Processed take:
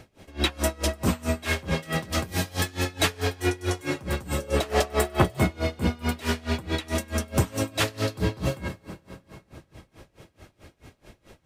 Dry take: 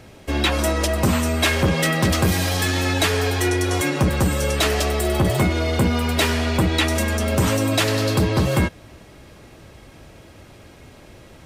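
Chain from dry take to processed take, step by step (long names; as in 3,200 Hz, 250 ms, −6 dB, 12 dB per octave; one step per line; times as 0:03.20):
0:04.37–0:05.24: parametric band 350 Hz → 1,500 Hz +8.5 dB 2.4 octaves
dense smooth reverb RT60 4.1 s, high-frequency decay 0.7×, DRR 12 dB
tremolo with a sine in dB 4.6 Hz, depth 25 dB
level −2 dB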